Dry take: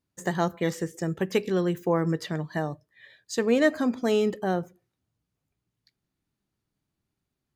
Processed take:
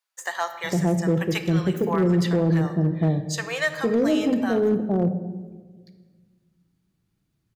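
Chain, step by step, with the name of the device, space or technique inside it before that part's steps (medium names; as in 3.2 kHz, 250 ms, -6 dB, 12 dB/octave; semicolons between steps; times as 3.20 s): peaking EQ 94 Hz +6 dB 1.8 oct; bands offset in time highs, lows 460 ms, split 730 Hz; simulated room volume 1400 m³, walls mixed, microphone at 0.7 m; limiter into clipper (peak limiter -17 dBFS, peak gain reduction 6 dB; hard clipper -19 dBFS, distortion -25 dB); trim +4.5 dB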